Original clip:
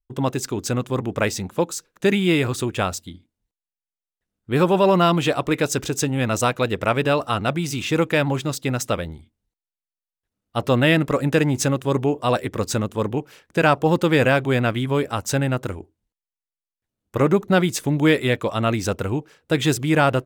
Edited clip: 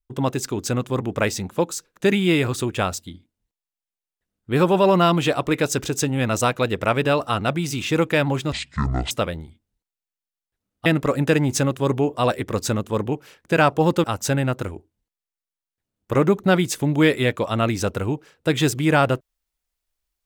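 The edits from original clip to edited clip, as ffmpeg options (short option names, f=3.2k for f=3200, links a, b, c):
-filter_complex "[0:a]asplit=5[a][b][c][d][e];[a]atrim=end=8.524[f];[b]atrim=start=8.52:end=8.82,asetpts=PTS-STARTPTS,asetrate=22491,aresample=44100,atrim=end_sample=25941,asetpts=PTS-STARTPTS[g];[c]atrim=start=8.816:end=10.572[h];[d]atrim=start=10.908:end=14.092[i];[e]atrim=start=15.078[j];[f][g]acrossfade=d=0.004:c1=hsin:c2=hsin[k];[k][h]acrossfade=d=0.004:c1=hsin:c2=hsin[l];[l][i]acrossfade=d=0.004:c1=hsin:c2=hsin[m];[m][j]acrossfade=d=0.004:c1=hsin:c2=hsin"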